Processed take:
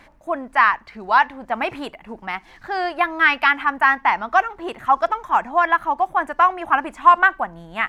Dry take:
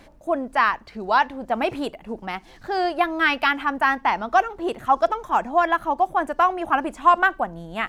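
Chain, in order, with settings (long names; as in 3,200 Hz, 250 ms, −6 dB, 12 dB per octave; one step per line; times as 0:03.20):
octave-band graphic EQ 500/1,000/2,000 Hz −3/+6/+8 dB
level −3 dB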